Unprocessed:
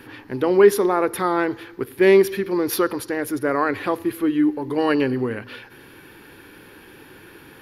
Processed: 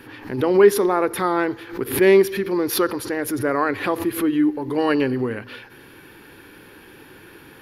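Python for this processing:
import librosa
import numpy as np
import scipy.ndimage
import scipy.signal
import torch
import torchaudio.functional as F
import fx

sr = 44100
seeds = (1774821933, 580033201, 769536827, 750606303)

y = fx.pre_swell(x, sr, db_per_s=130.0)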